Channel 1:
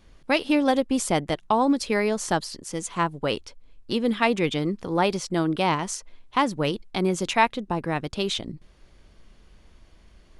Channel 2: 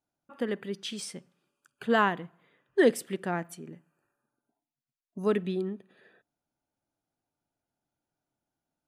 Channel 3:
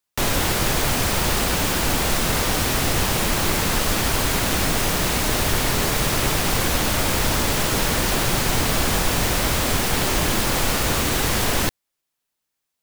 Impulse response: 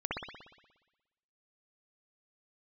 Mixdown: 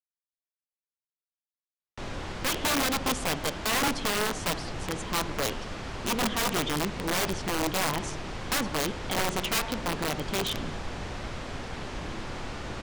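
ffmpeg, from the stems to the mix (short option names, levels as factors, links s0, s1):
-filter_complex "[0:a]equalizer=f=3200:t=o:w=0.27:g=7.5,adelay=2150,volume=0.631,asplit=2[s0][s1];[s1]volume=0.0944[s2];[2:a]lowpass=6300,adelay=1800,volume=0.15,asplit=2[s3][s4];[s4]volume=0.282[s5];[3:a]atrim=start_sample=2205[s6];[s2][s5]amix=inputs=2:normalize=0[s7];[s7][s6]afir=irnorm=-1:irlink=0[s8];[s0][s3][s8]amix=inputs=3:normalize=0,lowpass=9800,highshelf=f=2800:g=-6,aeval=exprs='(mod(11.2*val(0)+1,2)-1)/11.2':c=same"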